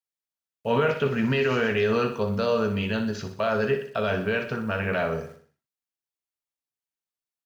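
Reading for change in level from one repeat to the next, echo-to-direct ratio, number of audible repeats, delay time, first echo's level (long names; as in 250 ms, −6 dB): −6.5 dB, −8.5 dB, 4, 61 ms, −9.5 dB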